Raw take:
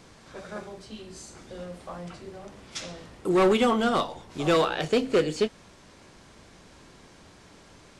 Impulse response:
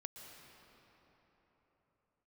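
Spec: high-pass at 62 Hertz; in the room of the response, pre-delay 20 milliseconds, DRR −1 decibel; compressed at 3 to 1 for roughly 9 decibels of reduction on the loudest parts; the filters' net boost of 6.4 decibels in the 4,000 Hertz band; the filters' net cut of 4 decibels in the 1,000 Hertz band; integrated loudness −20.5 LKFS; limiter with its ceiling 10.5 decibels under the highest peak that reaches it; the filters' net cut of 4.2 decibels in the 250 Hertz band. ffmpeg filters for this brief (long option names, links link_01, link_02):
-filter_complex "[0:a]highpass=62,equalizer=frequency=250:width_type=o:gain=-5.5,equalizer=frequency=1000:width_type=o:gain=-5.5,equalizer=frequency=4000:width_type=o:gain=8.5,acompressor=threshold=-32dB:ratio=3,alimiter=level_in=5dB:limit=-24dB:level=0:latency=1,volume=-5dB,asplit=2[link_01][link_02];[1:a]atrim=start_sample=2205,adelay=20[link_03];[link_02][link_03]afir=irnorm=-1:irlink=0,volume=5dB[link_04];[link_01][link_04]amix=inputs=2:normalize=0,volume=17.5dB"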